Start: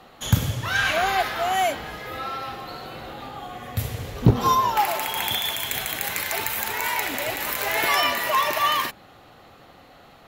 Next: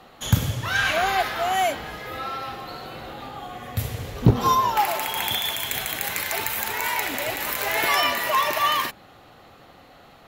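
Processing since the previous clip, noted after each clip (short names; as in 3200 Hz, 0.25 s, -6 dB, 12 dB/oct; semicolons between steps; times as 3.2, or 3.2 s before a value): nothing audible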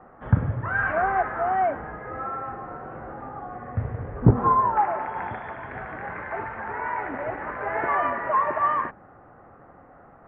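steep low-pass 1700 Hz 36 dB/oct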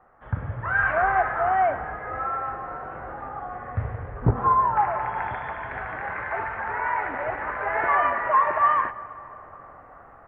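bell 230 Hz -10.5 dB 2.3 oct; reverb RT60 4.2 s, pre-delay 51 ms, DRR 16 dB; AGC gain up to 10 dB; gain -5 dB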